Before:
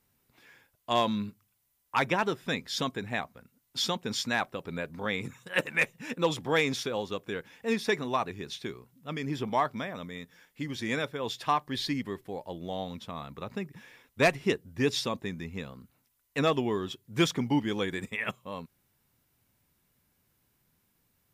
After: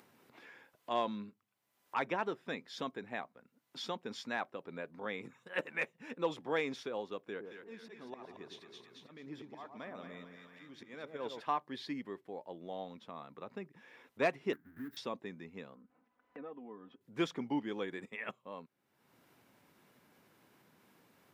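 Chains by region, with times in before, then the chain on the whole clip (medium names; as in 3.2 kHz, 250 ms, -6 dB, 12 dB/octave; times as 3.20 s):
7.25–11.41 s: slow attack 410 ms + two-band feedback delay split 1.1 kHz, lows 113 ms, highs 223 ms, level -6 dB
14.53–14.97 s: square wave that keeps the level + compression 10:1, threshold -34 dBFS + FFT filter 190 Hz 0 dB, 280 Hz +6 dB, 490 Hz -21 dB, 1.1 kHz -14 dB, 1.6 kHz +7 dB, 2.5 kHz -14 dB, 5 kHz -18 dB, 7.2 kHz -15 dB, 14 kHz +12 dB
15.75–17.01 s: low-pass 1.5 kHz + compression 2:1, threshold -51 dBFS + comb 4 ms, depth 71%
whole clip: low-pass 1.7 kHz 6 dB/octave; upward compressor, threshold -39 dBFS; high-pass 250 Hz 12 dB/octave; trim -6 dB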